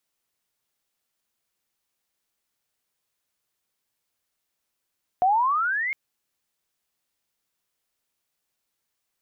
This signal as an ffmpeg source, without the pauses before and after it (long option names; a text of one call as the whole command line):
ffmpeg -f lavfi -i "aevalsrc='pow(10,(-16-8.5*t/0.71)/20)*sin(2*PI*710*0.71/log(2200/710)*(exp(log(2200/710)*t/0.71)-1))':duration=0.71:sample_rate=44100" out.wav